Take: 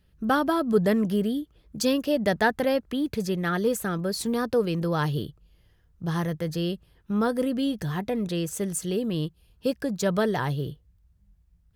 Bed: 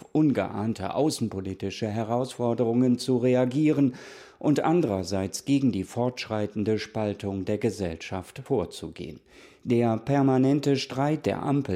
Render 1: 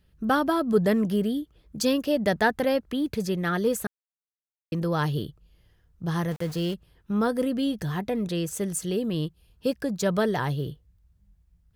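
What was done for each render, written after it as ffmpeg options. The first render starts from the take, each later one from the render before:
-filter_complex "[0:a]asettb=1/sr,asplit=3[a][b][c];[a]atrim=end=6.314[d];[b]atrim=start=6.31:end=6.74,asetpts=PTS-STARTPTS,afade=t=in:d=0.004:c=qsin,afade=t=out:st=0.426:d=0.004:c=qsin,aeval=exprs='val(0)*gte(abs(val(0)),0.0119)':c=same[e];[c]atrim=start=6.736[f];[d][e]acrossfade=d=0.004:c1=hsin:c2=qsin[g];[g][f]acrossfade=d=0.004:c1=qsin:c2=hsin,asplit=3[h][i][j];[h]atrim=end=3.87,asetpts=PTS-STARTPTS,afade=t=out:st=3.866:d=0.004:c=hsin[k];[i]atrim=start=3.87:end=4.72,asetpts=PTS-STARTPTS,volume=0[l];[j]atrim=start=4.72,asetpts=PTS-STARTPTS,afade=t=in:d=0.004:c=hsin[m];[k][l][m]concat=n=3:v=0:a=1"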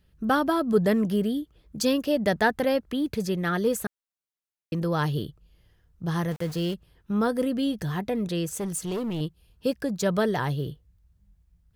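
-filter_complex "[0:a]asettb=1/sr,asplit=3[a][b][c];[a]atrim=end=8.514[d];[b]atrim=start=8.51:end=9.21,asetpts=PTS-STARTPTS,afade=t=in:d=0.004:c=qsin,afade=t=out:st=0.696:d=0.004:c=qsin,asoftclip=type=hard:threshold=-26dB[e];[c]atrim=start=9.206[f];[d][e]acrossfade=d=0.004:c1=hsin:c2=qsin[g];[g][f]acrossfade=d=0.004:c1=qsin:c2=hsin"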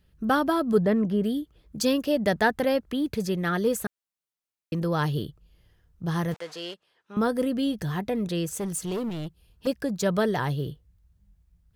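-filter_complex "[0:a]asplit=3[a][b][c];[a]afade=t=out:st=0.79:d=0.02[d];[b]lowpass=f=1.7k:p=1,afade=t=in:st=0.79:d=0.02,afade=t=out:st=1.23:d=0.02[e];[c]afade=t=in:st=1.23:d=0.02[f];[d][e][f]amix=inputs=3:normalize=0,asettb=1/sr,asplit=3[g][h][i];[g]atrim=end=6.344[j];[h]atrim=start=6.34:end=7.17,asetpts=PTS-STARTPTS,afade=t=in:d=0.004:c=qsin,afade=t=out:st=0.826:d=0.004:c=qsin,highpass=590,lowpass=7.1k[k];[i]atrim=start=7.166[l];[j][k]acrossfade=d=0.004:c1=hsin:c2=qsin[m];[m][l]acrossfade=d=0.004:c1=qsin:c2=hsin,asettb=1/sr,asplit=3[n][o][p];[n]atrim=end=9.094[q];[o]atrim=start=9.09:end=9.67,asetpts=PTS-STARTPTS,afade=t=in:d=0.004:c=qsin,afade=t=out:st=0.576:d=0.004:c=qsin,asoftclip=type=hard:threshold=-30.5dB[r];[p]atrim=start=9.666[s];[q][r]acrossfade=d=0.004:c1=hsin:c2=qsin[t];[t][s]acrossfade=d=0.004:c1=qsin:c2=hsin"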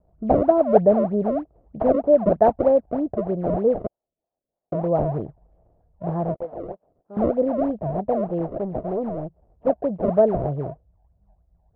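-af "acrusher=samples=31:mix=1:aa=0.000001:lfo=1:lforange=49.6:lforate=3.2,lowpass=f=660:t=q:w=4.9"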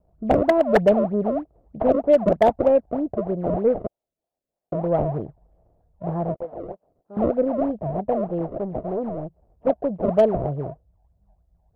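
-af "aeval=exprs='0.422*(abs(mod(val(0)/0.422+3,4)-2)-1)':c=same,aeval=exprs='0.447*(cos(1*acos(clip(val(0)/0.447,-1,1)))-cos(1*PI/2))+0.00355*(cos(6*acos(clip(val(0)/0.447,-1,1)))-cos(6*PI/2))+0.00708*(cos(7*acos(clip(val(0)/0.447,-1,1)))-cos(7*PI/2))':c=same"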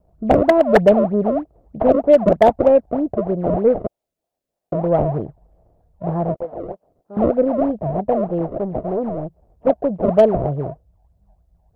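-af "volume=4.5dB"

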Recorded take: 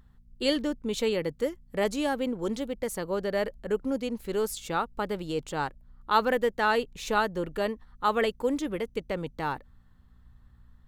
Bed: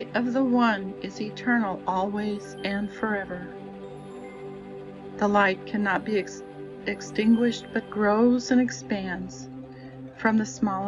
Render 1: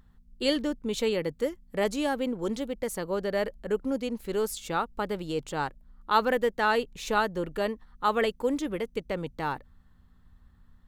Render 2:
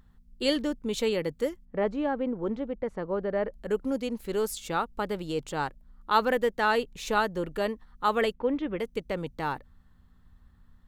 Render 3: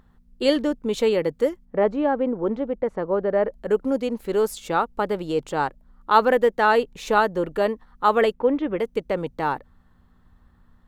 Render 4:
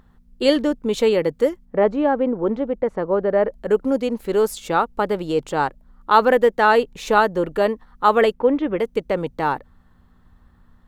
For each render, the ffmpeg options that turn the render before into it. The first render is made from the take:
-af "bandreject=f=60:t=h:w=4,bandreject=f=120:t=h:w=4"
-filter_complex "[0:a]asettb=1/sr,asplit=3[a][b][c];[a]atrim=end=1.654[d];[b]atrim=start=1.65:end=3.54,asetpts=PTS-STARTPTS,afade=t=in:d=0.004:c=qsin,afade=t=out:st=1.886:d=0.004:c=qsin,lowpass=1.6k[e];[c]atrim=start=3.536[f];[d][e]acrossfade=d=0.004:c1=hsin:c2=qsin[g];[g][f]acrossfade=d=0.004:c1=qsin:c2=hsin,asettb=1/sr,asplit=3[h][i][j];[h]atrim=end=8.334[k];[i]atrim=start=8.33:end=8.79,asetpts=PTS-STARTPTS,afade=t=in:d=0.004:c=qsin,afade=t=out:st=0.456:d=0.004:c=qsin,lowpass=f=3.1k:w=0.5412,lowpass=f=3.1k:w=1.3066[l];[j]atrim=start=8.786[m];[k][l]acrossfade=d=0.004:c1=hsin:c2=qsin[n];[n][m]acrossfade=d=0.004:c1=qsin:c2=hsin"
-af "equalizer=f=620:w=0.35:g=8"
-af "volume=3dB,alimiter=limit=-1dB:level=0:latency=1"

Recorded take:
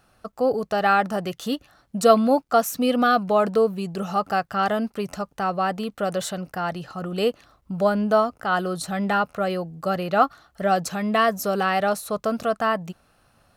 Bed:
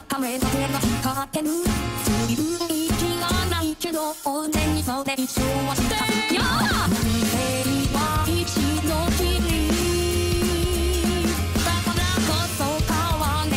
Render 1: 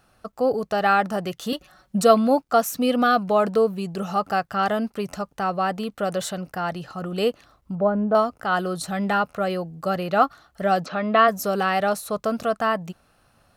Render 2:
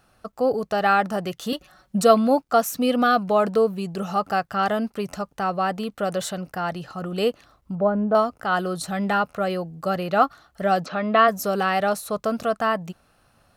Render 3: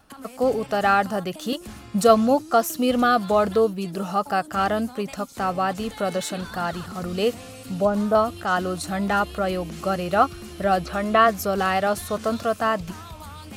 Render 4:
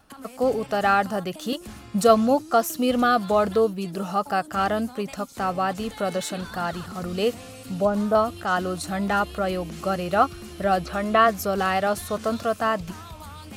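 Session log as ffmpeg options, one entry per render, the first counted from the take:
-filter_complex "[0:a]asettb=1/sr,asplit=3[a][b][c];[a]atrim=end=1.524[d];[b]atrim=start=1.52:end=2.03,asetpts=PTS-STARTPTS,afade=t=in:d=0.004:c=qsin,afade=t=out:st=0.506:d=0.004:c=qsin,aecho=1:1:5.4:0.96,atrim=end_sample=22491[e];[c]atrim=start=2.026[f];[d][e]acrossfade=d=0.004:c1=hsin:c2=qsin[g];[g][f]acrossfade=d=0.004:c1=qsin:c2=hsin,asettb=1/sr,asplit=3[h][i][j];[h]atrim=end=7.754[k];[i]atrim=start=7.75:end=8.15,asetpts=PTS-STARTPTS,afade=t=in:d=0.004:c=qsin,afade=t=out:st=0.396:d=0.004:c=qsin,lowpass=1.1k[l];[j]atrim=start=8.146[m];[k][l]acrossfade=d=0.004:c1=hsin:c2=qsin[n];[n][m]acrossfade=d=0.004:c1=qsin:c2=hsin,asplit=3[o][p][q];[o]afade=t=out:st=10.84:d=0.02[r];[p]highpass=210,equalizer=f=270:t=q:w=4:g=7,equalizer=f=590:t=q:w=4:g=7,equalizer=f=1.3k:t=q:w=4:g=8,lowpass=f=4.3k:w=0.5412,lowpass=f=4.3k:w=1.3066,afade=t=in:st=10.84:d=0.02,afade=t=out:st=11.27:d=0.02[s];[q]afade=t=in:st=11.27:d=0.02[t];[r][s][t]amix=inputs=3:normalize=0"
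-af anull
-filter_complex "[1:a]volume=-17dB[a];[0:a][a]amix=inputs=2:normalize=0"
-af "volume=-1dB"

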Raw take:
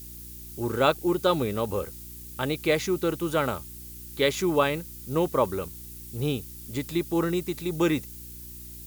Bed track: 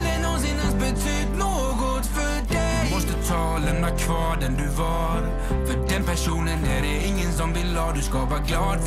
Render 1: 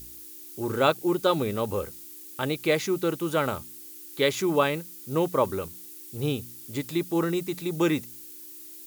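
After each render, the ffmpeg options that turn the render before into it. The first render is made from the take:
-af "bandreject=f=60:t=h:w=4,bandreject=f=120:t=h:w=4,bandreject=f=180:t=h:w=4,bandreject=f=240:t=h:w=4"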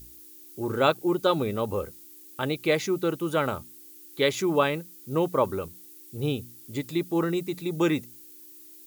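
-af "afftdn=nr=6:nf=-44"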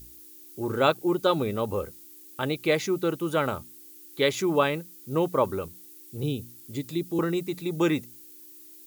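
-filter_complex "[0:a]asettb=1/sr,asplit=3[a][b][c];[a]atrim=end=6.234[d];[b]atrim=start=6.23:end=7.19,asetpts=PTS-STARTPTS,afade=t=in:d=0.004:c=qsin,afade=t=out:st=0.956:d=0.004:c=qsin,acrossover=split=450|3000[e][f][g];[f]acompressor=threshold=-48dB:ratio=6:attack=3.2:release=140:knee=2.83:detection=peak[h];[e][h][g]amix=inputs=3:normalize=0[i];[c]atrim=start=7.186[j];[d][i]acrossfade=d=0.004:c1=hsin:c2=qsin[k];[k][j]acrossfade=d=0.004:c1=qsin:c2=hsin"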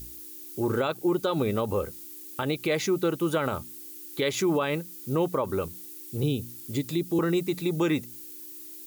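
-filter_complex "[0:a]asplit=2[a][b];[b]acompressor=threshold=-33dB:ratio=6,volume=-1dB[c];[a][c]amix=inputs=2:normalize=0,alimiter=limit=-16.5dB:level=0:latency=1:release=70"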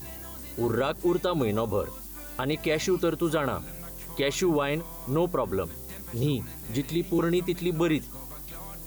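-filter_complex "[1:a]volume=-21dB[a];[0:a][a]amix=inputs=2:normalize=0"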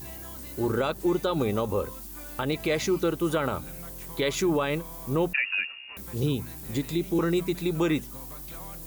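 -filter_complex "[0:a]asettb=1/sr,asplit=3[a][b][c];[a]atrim=end=5.334[d];[b]atrim=start=5.33:end=5.97,asetpts=PTS-STARTPTS,afade=t=in:d=0.004:c=qsin,afade=t=out:st=0.636:d=0.004:c=qsin,lowpass=f=2.5k:t=q:w=0.5098,lowpass=f=2.5k:t=q:w=0.6013,lowpass=f=2.5k:t=q:w=0.9,lowpass=f=2.5k:t=q:w=2.563,afreqshift=-2900[e];[c]atrim=start=5.966[f];[d][e]acrossfade=d=0.004:c1=hsin:c2=qsin[g];[g][f]acrossfade=d=0.004:c1=qsin:c2=hsin"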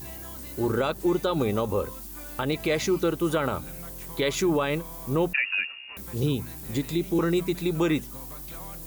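-af "volume=1dB"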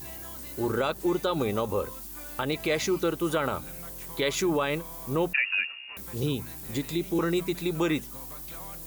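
-af "lowshelf=f=390:g=-4.5"

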